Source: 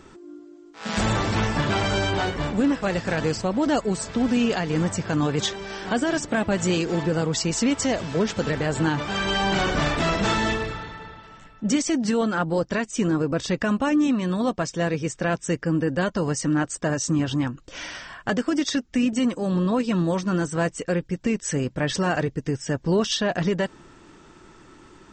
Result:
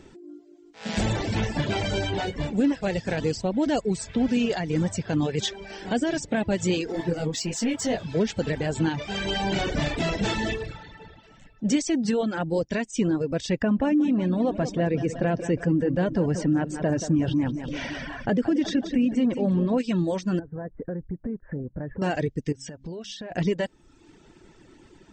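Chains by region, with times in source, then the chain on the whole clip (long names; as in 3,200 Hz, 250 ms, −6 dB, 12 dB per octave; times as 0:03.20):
0:06.92–0:08.07: low-shelf EQ 69 Hz −10 dB + leveller curve on the samples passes 1 + micro pitch shift up and down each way 34 cents
0:13.62–0:19.78: low-pass filter 1,300 Hz 6 dB per octave + repeating echo 179 ms, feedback 51%, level −11 dB + envelope flattener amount 50%
0:20.39–0:22.02: Butterworth low-pass 1,700 Hz 48 dB per octave + spectral tilt −1.5 dB per octave + downward compressor 4 to 1, threshold −28 dBFS
0:22.52–0:23.32: hum removal 67.1 Hz, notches 4 + downward compressor 20 to 1, threshold −31 dBFS
whole clip: parametric band 1,200 Hz −11.5 dB 0.64 octaves; reverb reduction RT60 0.79 s; high-shelf EQ 5,200 Hz −5 dB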